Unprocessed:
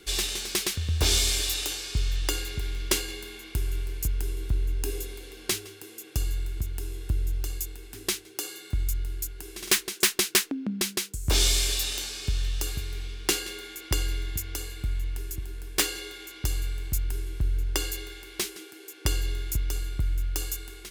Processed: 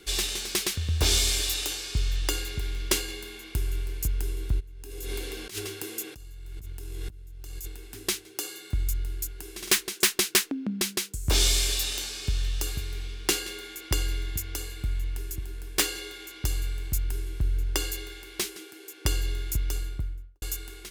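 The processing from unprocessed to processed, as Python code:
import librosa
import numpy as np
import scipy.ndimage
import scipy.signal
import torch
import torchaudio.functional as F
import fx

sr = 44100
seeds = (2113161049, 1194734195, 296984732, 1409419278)

y = fx.over_compress(x, sr, threshold_db=-38.0, ratio=-1.0, at=(4.59, 7.66), fade=0.02)
y = fx.studio_fade_out(y, sr, start_s=19.72, length_s=0.7)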